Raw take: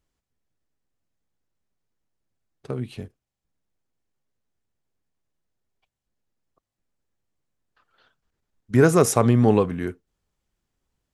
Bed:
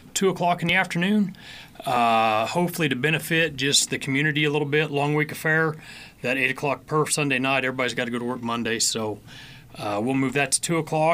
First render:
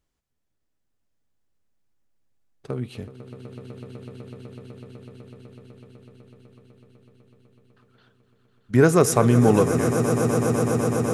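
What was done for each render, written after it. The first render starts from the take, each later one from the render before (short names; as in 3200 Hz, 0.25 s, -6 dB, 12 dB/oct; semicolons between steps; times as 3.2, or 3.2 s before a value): swelling echo 0.125 s, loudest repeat 8, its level -13 dB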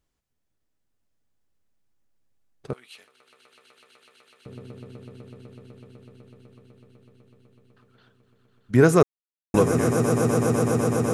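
2.73–4.46 HPF 1400 Hz; 9.03–9.54 mute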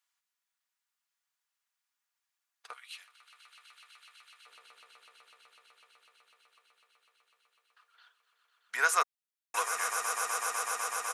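HPF 1000 Hz 24 dB/oct; comb 4.2 ms, depth 36%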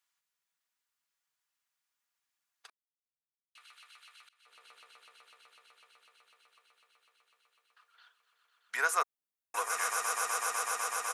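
2.7–3.55 mute; 4.29–4.69 fade in, from -24 dB; 8.81–9.7 bell 3900 Hz -6 dB 2.8 oct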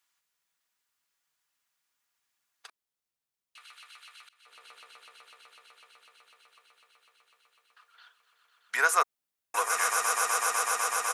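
gain +5.5 dB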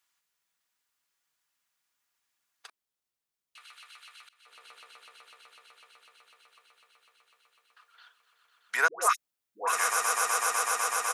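8.88–9.73 dispersion highs, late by 0.134 s, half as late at 710 Hz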